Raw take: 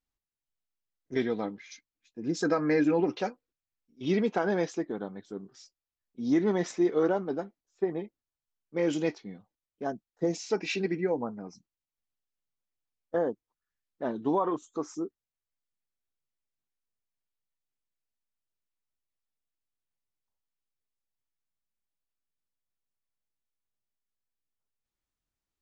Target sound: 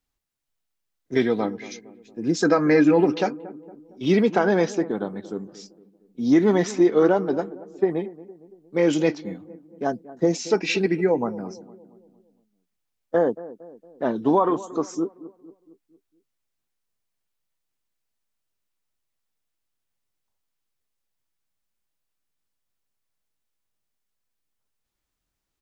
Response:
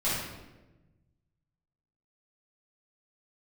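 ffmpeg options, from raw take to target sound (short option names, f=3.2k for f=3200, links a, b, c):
-filter_complex "[0:a]acrossover=split=110|3100[a][b][c];[a]acrusher=samples=9:mix=1:aa=0.000001:lfo=1:lforange=9:lforate=0.35[d];[b]asplit=2[e][f];[f]adelay=230,lowpass=f=930:p=1,volume=-16dB,asplit=2[g][h];[h]adelay=230,lowpass=f=930:p=1,volume=0.53,asplit=2[i][j];[j]adelay=230,lowpass=f=930:p=1,volume=0.53,asplit=2[k][l];[l]adelay=230,lowpass=f=930:p=1,volume=0.53,asplit=2[m][n];[n]adelay=230,lowpass=f=930:p=1,volume=0.53[o];[e][g][i][k][m][o]amix=inputs=6:normalize=0[p];[d][p][c]amix=inputs=3:normalize=0,volume=8dB"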